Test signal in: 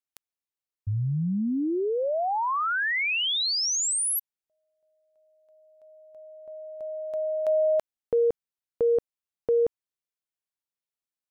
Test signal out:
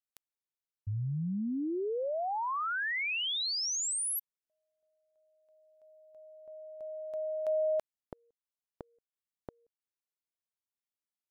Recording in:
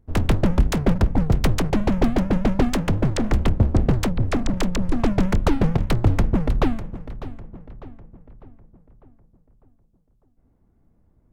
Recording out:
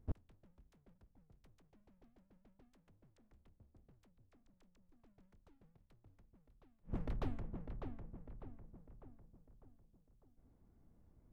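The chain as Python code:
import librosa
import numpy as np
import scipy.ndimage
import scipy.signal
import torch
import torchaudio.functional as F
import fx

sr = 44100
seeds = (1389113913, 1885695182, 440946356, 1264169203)

y = fx.gate_flip(x, sr, shuts_db=-19.0, range_db=-42)
y = y * librosa.db_to_amplitude(-7.0)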